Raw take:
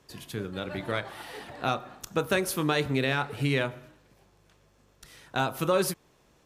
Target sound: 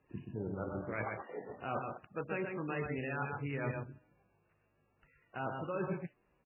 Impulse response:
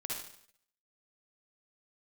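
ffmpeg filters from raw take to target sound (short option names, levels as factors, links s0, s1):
-af "afwtdn=0.0158,highshelf=f=3500:g=3,areverse,acompressor=threshold=0.0112:ratio=10,areverse,aecho=1:1:128:0.596,volume=1.58" -ar 11025 -c:a libmp3lame -b:a 8k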